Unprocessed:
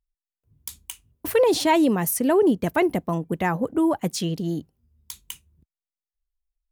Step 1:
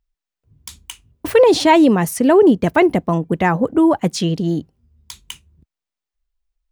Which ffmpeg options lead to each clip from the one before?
-af "equalizer=f=14k:t=o:w=0.88:g=-15,volume=7.5dB"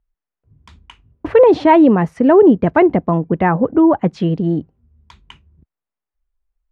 -af "lowpass=1.7k,volume=2dB"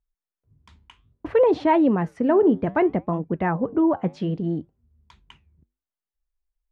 -af "flanger=delay=2.4:depth=8.6:regen=-83:speed=0.62:shape=triangular,volume=-4dB"

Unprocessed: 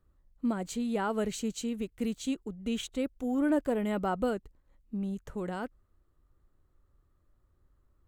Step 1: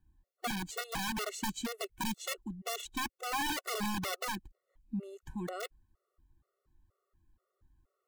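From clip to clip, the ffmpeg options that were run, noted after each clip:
-af "aeval=exprs='(mod(21.1*val(0)+1,2)-1)/21.1':c=same,afftfilt=real='re*gt(sin(2*PI*2.1*pts/sr)*(1-2*mod(floor(b*sr/1024/370),2)),0)':imag='im*gt(sin(2*PI*2.1*pts/sr)*(1-2*mod(floor(b*sr/1024/370),2)),0)':win_size=1024:overlap=0.75"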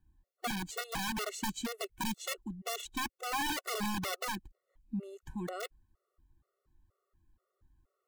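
-af anull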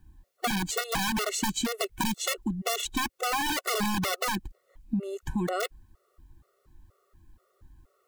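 -filter_complex "[0:a]asplit=2[a][b];[b]alimiter=level_in=6.5dB:limit=-24dB:level=0:latency=1:release=22,volume=-6.5dB,volume=2dB[c];[a][c]amix=inputs=2:normalize=0,acompressor=threshold=-32dB:ratio=4,volume=6.5dB"

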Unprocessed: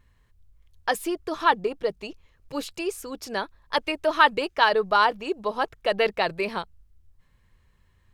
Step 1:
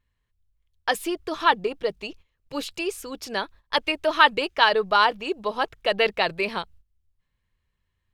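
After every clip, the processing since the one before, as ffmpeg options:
-af "agate=range=-14dB:threshold=-47dB:ratio=16:detection=peak,equalizer=f=3.1k:t=o:w=1.3:g=5"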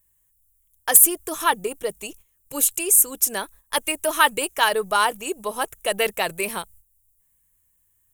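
-af "aexciter=amount=11.9:drive=9.7:freq=7.1k,volume=2dB,asoftclip=hard,volume=-2dB,volume=-1dB"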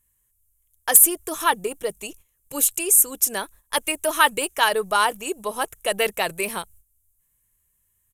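-af "aresample=32000,aresample=44100"

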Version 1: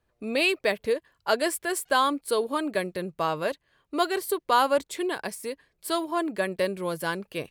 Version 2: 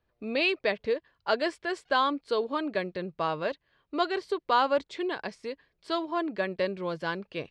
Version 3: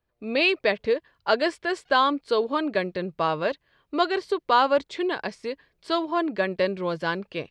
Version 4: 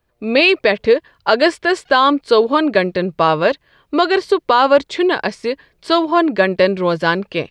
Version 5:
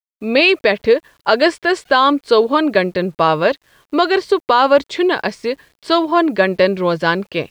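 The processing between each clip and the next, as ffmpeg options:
-af "lowpass=f=5.1k:w=0.5412,lowpass=f=5.1k:w=1.3066,volume=-2.5dB"
-af "dynaudnorm=f=100:g=5:m=8dB,volume=-3dB"
-af "alimiter=level_in=12dB:limit=-1dB:release=50:level=0:latency=1,volume=-1dB"
-af "acrusher=bits=8:mix=0:aa=0.000001"

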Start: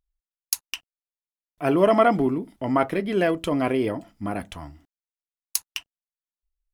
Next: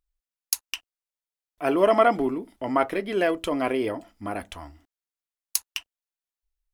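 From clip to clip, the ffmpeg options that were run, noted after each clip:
-af "equalizer=f=150:t=o:w=1.1:g=-12.5"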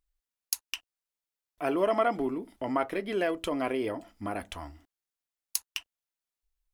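-af "acompressor=threshold=-35dB:ratio=1.5"

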